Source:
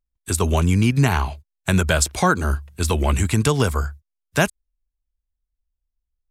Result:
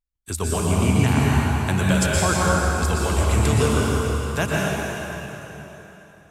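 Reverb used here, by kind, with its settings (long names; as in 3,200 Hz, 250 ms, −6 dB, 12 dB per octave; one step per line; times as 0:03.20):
dense smooth reverb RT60 3.7 s, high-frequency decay 0.85×, pre-delay 105 ms, DRR −5.5 dB
level −6.5 dB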